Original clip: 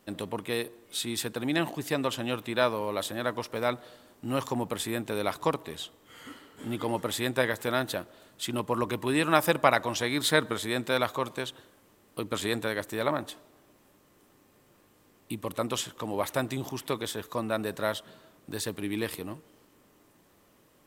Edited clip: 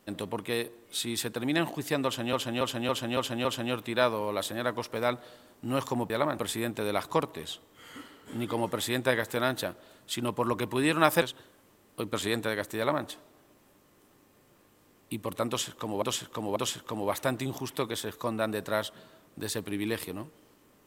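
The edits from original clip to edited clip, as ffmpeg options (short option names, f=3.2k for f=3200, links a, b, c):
-filter_complex "[0:a]asplit=11[a][b][c][d][e][f][g][h][i][j][k];[a]atrim=end=2.332[l];[b]atrim=start=2.048:end=2.332[m];[c]atrim=start=2.048:end=2.332[n];[d]atrim=start=2.048:end=2.332[o];[e]atrim=start=2.048:end=2.332[p];[f]atrim=start=2.048:end=4.702[q];[g]atrim=start=12.958:end=13.252[r];[h]atrim=start=4.698:end=9.532[s];[i]atrim=start=11.408:end=16.212[t];[j]atrim=start=15.668:end=16.212[u];[k]atrim=start=15.668[v];[l][m]acrossfade=d=0.004:c1=hsin:c2=hsin[w];[w][n]acrossfade=d=0.004:c1=hsin:c2=hsin[x];[x][o]acrossfade=d=0.004:c1=hsin:c2=hsin[y];[y][p]acrossfade=d=0.004:c1=hsin:c2=hsin[z];[z][q]acrossfade=d=0.004:c1=hsin:c2=hsin[aa];[aa][r]acrossfade=d=0.004:c1=hsin:c2=hsin[ab];[ab][s]acrossfade=d=0.004:c1=hsin:c2=hsin[ac];[ac][t]acrossfade=d=0.004:c1=hsin:c2=hsin[ad];[ad][u]acrossfade=d=0.004:c1=hsin:c2=hsin[ae];[ae][v]acrossfade=d=0.004:c1=hsin:c2=hsin"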